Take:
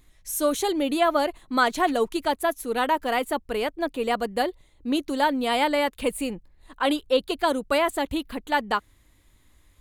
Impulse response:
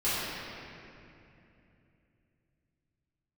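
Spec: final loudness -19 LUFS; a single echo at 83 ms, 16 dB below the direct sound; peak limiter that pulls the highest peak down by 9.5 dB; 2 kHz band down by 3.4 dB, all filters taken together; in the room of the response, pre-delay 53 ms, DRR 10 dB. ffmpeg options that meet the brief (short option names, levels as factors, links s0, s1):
-filter_complex "[0:a]equalizer=f=2000:t=o:g=-4.5,alimiter=limit=0.112:level=0:latency=1,aecho=1:1:83:0.158,asplit=2[s0][s1];[1:a]atrim=start_sample=2205,adelay=53[s2];[s1][s2]afir=irnorm=-1:irlink=0,volume=0.0794[s3];[s0][s3]amix=inputs=2:normalize=0,volume=3.16"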